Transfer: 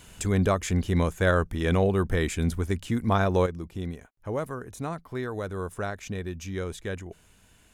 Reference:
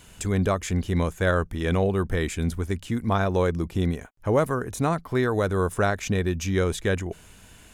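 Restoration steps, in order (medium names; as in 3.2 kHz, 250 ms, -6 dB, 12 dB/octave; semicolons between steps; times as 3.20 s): trim 0 dB, from 3.46 s +9 dB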